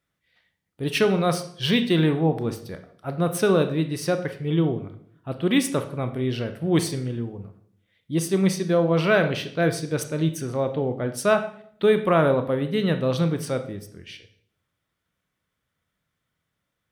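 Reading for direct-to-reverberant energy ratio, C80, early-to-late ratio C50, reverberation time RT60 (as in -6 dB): 8.0 dB, 15.0 dB, 11.0 dB, 0.60 s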